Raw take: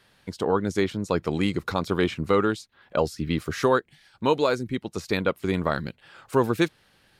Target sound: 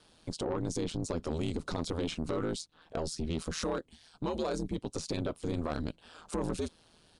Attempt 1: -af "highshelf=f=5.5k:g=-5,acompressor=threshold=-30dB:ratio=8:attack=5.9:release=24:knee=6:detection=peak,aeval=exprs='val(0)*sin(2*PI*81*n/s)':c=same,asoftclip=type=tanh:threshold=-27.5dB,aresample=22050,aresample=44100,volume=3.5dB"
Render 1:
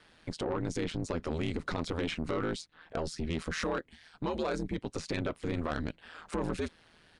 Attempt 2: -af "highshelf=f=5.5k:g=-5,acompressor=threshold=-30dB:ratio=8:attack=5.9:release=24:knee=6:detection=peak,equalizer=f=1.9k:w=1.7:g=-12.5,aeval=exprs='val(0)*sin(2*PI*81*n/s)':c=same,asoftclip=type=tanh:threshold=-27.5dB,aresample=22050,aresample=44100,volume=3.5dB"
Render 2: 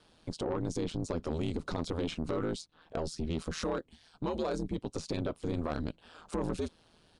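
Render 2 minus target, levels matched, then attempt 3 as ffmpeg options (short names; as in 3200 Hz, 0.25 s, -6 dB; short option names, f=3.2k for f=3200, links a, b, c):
8000 Hz band -4.5 dB
-af "highshelf=f=5.5k:g=3,acompressor=threshold=-30dB:ratio=8:attack=5.9:release=24:knee=6:detection=peak,equalizer=f=1.9k:w=1.7:g=-12.5,aeval=exprs='val(0)*sin(2*PI*81*n/s)':c=same,asoftclip=type=tanh:threshold=-27.5dB,aresample=22050,aresample=44100,volume=3.5dB"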